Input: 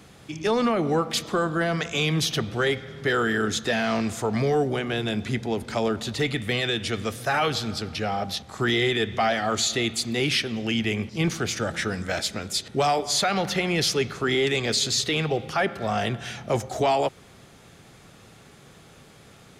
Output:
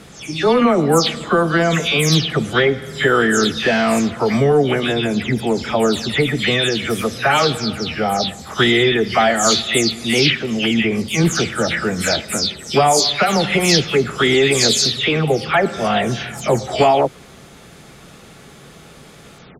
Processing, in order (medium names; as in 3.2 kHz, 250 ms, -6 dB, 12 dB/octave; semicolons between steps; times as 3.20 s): delay that grows with frequency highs early, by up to 214 ms; trim +9 dB